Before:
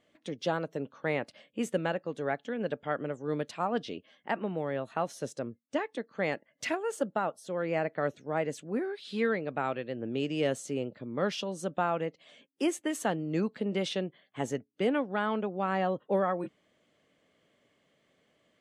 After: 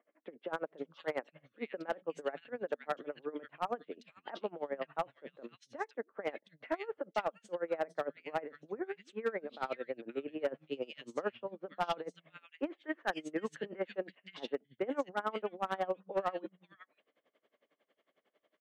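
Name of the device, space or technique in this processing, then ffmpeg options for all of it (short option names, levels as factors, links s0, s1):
helicopter radio: -filter_complex "[0:a]asettb=1/sr,asplit=3[s0][s1][s2];[s0]atrim=end=12.794[s3];[s1]atrim=start=12.79:end=13.9,asetpts=PTS-STARTPTS,afade=t=in:d=0.004:c=qsin,afade=t=out:st=1.106:d=0.004:c=qsin,equalizer=f=1700:t=o:w=0.55:g=9[s4];[s2]atrim=start=13.896[s5];[s3][s4]acrossfade=d=0.004:c1=hsin:c2=qsin[s6];[s6][s5]acrossfade=d=0.004:c1=qsin:c2=hsin,highpass=350,lowpass=2900,acrossover=split=150|2300[s7][s8][s9];[s7]adelay=280[s10];[s9]adelay=520[s11];[s10][s8][s11]amix=inputs=3:normalize=0,aeval=exprs='val(0)*pow(10,-23*(0.5-0.5*cos(2*PI*11*n/s))/20)':c=same,asoftclip=type=hard:threshold=0.0447,volume=1.26"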